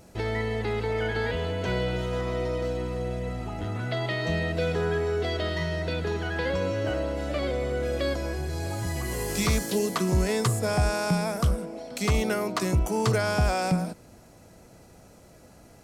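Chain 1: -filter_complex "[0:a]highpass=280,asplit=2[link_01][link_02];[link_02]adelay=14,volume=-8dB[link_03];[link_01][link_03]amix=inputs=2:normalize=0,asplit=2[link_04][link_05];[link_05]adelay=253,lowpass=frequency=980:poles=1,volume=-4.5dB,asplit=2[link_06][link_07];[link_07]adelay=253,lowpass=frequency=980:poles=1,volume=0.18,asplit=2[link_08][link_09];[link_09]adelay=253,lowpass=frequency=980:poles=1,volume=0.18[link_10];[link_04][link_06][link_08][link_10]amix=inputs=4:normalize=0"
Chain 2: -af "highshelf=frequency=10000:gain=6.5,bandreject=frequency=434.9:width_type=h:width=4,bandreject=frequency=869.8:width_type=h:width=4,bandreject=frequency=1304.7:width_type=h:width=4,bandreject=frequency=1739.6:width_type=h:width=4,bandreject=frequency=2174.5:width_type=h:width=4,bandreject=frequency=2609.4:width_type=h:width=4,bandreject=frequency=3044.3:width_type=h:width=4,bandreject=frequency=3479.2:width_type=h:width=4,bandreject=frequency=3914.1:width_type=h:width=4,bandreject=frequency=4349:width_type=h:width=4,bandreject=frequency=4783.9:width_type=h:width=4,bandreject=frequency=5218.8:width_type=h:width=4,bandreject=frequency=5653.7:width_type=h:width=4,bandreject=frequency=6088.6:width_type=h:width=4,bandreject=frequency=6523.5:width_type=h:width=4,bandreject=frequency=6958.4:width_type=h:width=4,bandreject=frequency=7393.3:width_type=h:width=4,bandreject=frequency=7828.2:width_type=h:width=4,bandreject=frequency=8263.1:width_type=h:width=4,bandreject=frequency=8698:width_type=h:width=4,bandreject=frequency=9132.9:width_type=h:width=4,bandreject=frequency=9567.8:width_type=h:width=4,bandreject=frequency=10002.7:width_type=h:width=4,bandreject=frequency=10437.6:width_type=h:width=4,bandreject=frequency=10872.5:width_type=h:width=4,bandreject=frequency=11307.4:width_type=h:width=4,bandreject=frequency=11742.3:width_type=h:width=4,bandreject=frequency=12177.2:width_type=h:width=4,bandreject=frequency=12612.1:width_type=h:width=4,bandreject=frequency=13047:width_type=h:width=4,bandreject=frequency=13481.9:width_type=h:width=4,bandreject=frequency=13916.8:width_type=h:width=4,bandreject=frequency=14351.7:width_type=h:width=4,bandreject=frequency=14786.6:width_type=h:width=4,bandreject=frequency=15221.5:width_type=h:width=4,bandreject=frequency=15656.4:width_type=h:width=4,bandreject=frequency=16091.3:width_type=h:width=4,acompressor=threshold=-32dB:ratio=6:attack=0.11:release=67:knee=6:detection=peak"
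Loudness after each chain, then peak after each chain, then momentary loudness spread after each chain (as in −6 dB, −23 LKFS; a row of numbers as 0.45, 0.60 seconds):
−28.5, −37.5 LKFS; −13.5, −28.5 dBFS; 8, 10 LU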